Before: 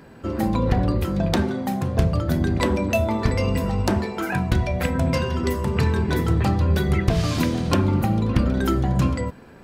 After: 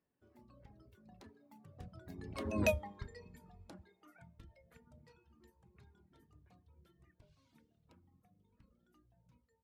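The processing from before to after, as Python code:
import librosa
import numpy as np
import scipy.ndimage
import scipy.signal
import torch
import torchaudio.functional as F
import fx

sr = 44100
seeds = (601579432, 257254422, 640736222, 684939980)

y = fx.doppler_pass(x, sr, speed_mps=32, closest_m=1.7, pass_at_s=2.64)
y = fx.dereverb_blind(y, sr, rt60_s=1.3)
y = y * 10.0 ** (-6.5 / 20.0)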